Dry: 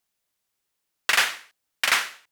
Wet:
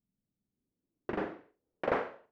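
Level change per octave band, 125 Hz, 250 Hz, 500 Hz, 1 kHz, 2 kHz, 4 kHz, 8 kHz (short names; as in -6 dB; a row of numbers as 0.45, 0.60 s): n/a, +11.0 dB, +6.5 dB, -8.5 dB, -20.0 dB, -31.0 dB, under -40 dB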